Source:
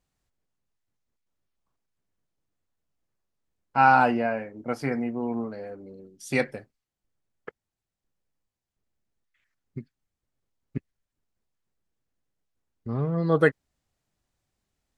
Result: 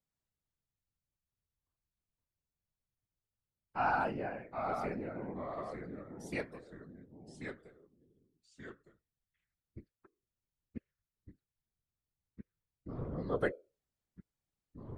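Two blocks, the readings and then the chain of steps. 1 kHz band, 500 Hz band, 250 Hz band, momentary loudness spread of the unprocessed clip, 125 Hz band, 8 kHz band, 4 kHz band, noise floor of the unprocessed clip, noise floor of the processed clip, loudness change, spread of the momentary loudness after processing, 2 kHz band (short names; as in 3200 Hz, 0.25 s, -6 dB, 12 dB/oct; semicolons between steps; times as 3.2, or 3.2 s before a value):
-13.0 dB, -11.0 dB, -13.5 dB, 24 LU, -13.5 dB, -13.0 dB, -12.5 dB, under -85 dBFS, under -85 dBFS, -13.5 dB, 21 LU, -13.0 dB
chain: resonator 470 Hz, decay 0.29 s, harmonics odd, mix 50%; whisperiser; echoes that change speed 0.312 s, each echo -2 st, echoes 2, each echo -6 dB; gain -8 dB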